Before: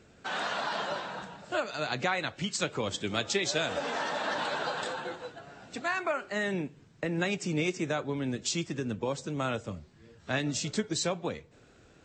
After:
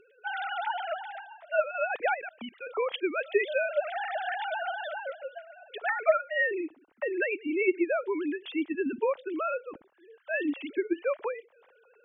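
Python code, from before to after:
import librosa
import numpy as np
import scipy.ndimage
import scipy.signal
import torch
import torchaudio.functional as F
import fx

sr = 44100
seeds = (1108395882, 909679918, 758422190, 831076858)

y = fx.sine_speech(x, sr)
y = fx.level_steps(y, sr, step_db=20, at=(2.14, 2.67))
y = y * librosa.db_to_amplitude(2.0)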